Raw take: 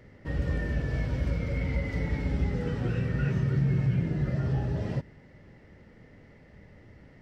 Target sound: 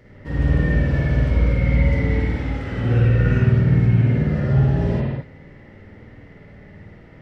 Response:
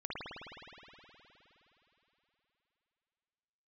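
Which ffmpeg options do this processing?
-filter_complex "[0:a]asettb=1/sr,asplit=3[a][b][c];[a]atrim=end=2.204[d];[b]atrim=start=2.2:end=2.78,asetpts=PTS-STARTPTS,afade=t=in:d=0.004:c=qsin,afade=t=out:st=0.576:d=0.004:c=qsin,lowshelf=f=420:g=-7.5[e];[c]atrim=start=2.776[f];[d][e]acrossfade=d=0.004:c1=hsin:c2=qsin[g];[g][f]acrossfade=d=0.004:c1=qsin:c2=hsin[h];[1:a]atrim=start_sample=2205,afade=t=out:st=0.29:d=0.01,atrim=end_sample=13230[i];[h][i]afir=irnorm=-1:irlink=0,volume=8dB"

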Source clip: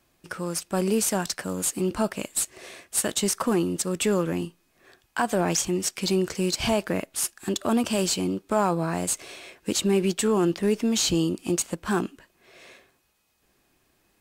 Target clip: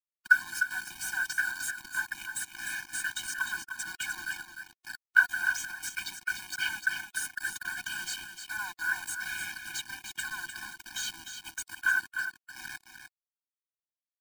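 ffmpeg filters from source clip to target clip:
-filter_complex "[0:a]asettb=1/sr,asplit=3[a][b][c];[a]atrim=end=2.854[d];[b]atrim=start=2.85:end=5.29,asetpts=PTS-STARTPTS,afade=t=in:d=0.004:c=qsin,afade=t=out:st=2.436:d=0.004:c=qsin,lowpass=f=9.3k:w=0.5412,lowpass=f=9.3k:w=1.3066[e];[c]atrim=start=5.286[f];[d][e]acrossfade=d=0.004:c1=hsin:c2=qsin[g];[g][f]acrossfade=d=0.004:c1=qsin:c2=hsin,acompressor=threshold=-31dB:ratio=6,flanger=delay=2:depth=5.4:regen=-49:speed=1.2:shape=triangular,volume=33.5dB,asoftclip=hard,volume=-33.5dB,highpass=f=1.5k:t=q:w=15,acrusher=bits=6:mix=0:aa=0.000001,aecho=1:1:302:0.398,afftfilt=real='re*eq(mod(floor(b*sr/1024/360),2),0)':imag='im*eq(mod(floor(b*sr/1024/360),2),0)':win_size=1024:overlap=0.75,volume=5dB"

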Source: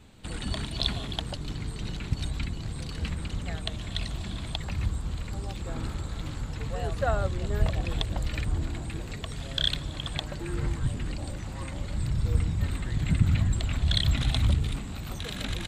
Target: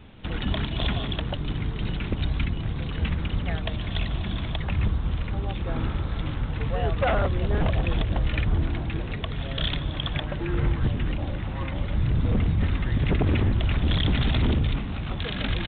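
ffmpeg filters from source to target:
-af "aeval=exprs='0.0794*(abs(mod(val(0)/0.0794+3,4)-2)-1)':c=same,aresample=8000,aresample=44100,volume=6dB"

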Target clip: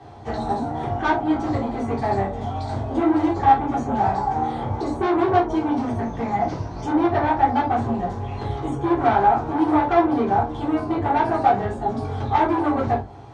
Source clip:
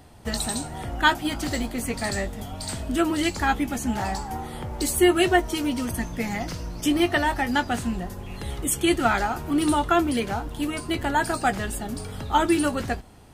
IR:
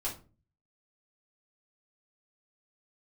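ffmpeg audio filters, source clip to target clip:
-filter_complex "[0:a]lowshelf=f=400:g=7,acrossover=split=170|1400[a][b][c];[c]acompressor=threshold=-43dB:ratio=5[d];[a][b][d]amix=inputs=3:normalize=0,asoftclip=type=tanh:threshold=-21.5dB,highpass=120,equalizer=f=180:t=q:w=4:g=-9,equalizer=f=280:t=q:w=4:g=-5,equalizer=f=820:t=q:w=4:g=6,equalizer=f=2.8k:t=q:w=4:g=-7,equalizer=f=4.9k:t=q:w=4:g=-7,lowpass=f=5.7k:w=0.5412,lowpass=f=5.7k:w=1.3066[e];[1:a]atrim=start_sample=2205,afade=t=out:st=0.14:d=0.01,atrim=end_sample=6615[f];[e][f]afir=irnorm=-1:irlink=0,volume=3.5dB"

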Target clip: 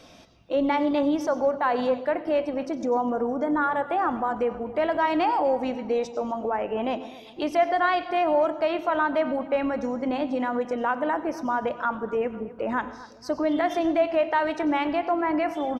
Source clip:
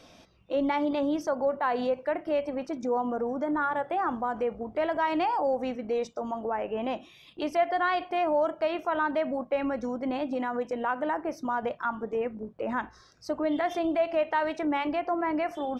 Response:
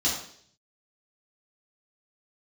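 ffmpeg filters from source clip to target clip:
-filter_complex "[0:a]asplit=2[a][b];[b]adelay=250,lowpass=f=3.3k:p=1,volume=-18dB,asplit=2[c][d];[d]adelay=250,lowpass=f=3.3k:p=1,volume=0.49,asplit=2[e][f];[f]adelay=250,lowpass=f=3.3k:p=1,volume=0.49,asplit=2[g][h];[h]adelay=250,lowpass=f=3.3k:p=1,volume=0.49[i];[a][c][e][g][i]amix=inputs=5:normalize=0,asplit=2[j][k];[1:a]atrim=start_sample=2205,adelay=89[l];[k][l]afir=irnorm=-1:irlink=0,volume=-25.5dB[m];[j][m]amix=inputs=2:normalize=0,volume=3.5dB"

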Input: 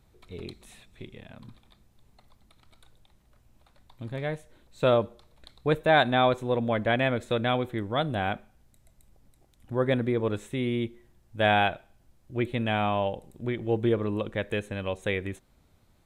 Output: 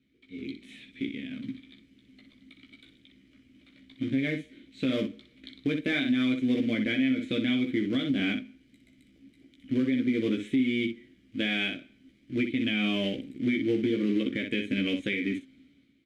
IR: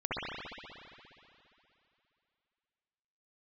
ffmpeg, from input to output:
-filter_complex "[0:a]asplit=2[a][b];[b]acrusher=bits=2:mode=log:mix=0:aa=0.000001,volume=-4.5dB[c];[a][c]amix=inputs=2:normalize=0,asplit=3[d][e][f];[d]bandpass=f=270:t=q:w=8,volume=0dB[g];[e]bandpass=f=2.29k:t=q:w=8,volume=-6dB[h];[f]bandpass=f=3.01k:t=q:w=8,volume=-9dB[i];[g][h][i]amix=inputs=3:normalize=0,acompressor=threshold=-40dB:ratio=2,asplit=2[j][k];[k]aecho=0:1:15|61:0.668|0.422[l];[j][l]amix=inputs=2:normalize=0,dynaudnorm=f=140:g=9:m=12dB,alimiter=limit=-20.5dB:level=0:latency=1:release=123,volume=2.5dB"

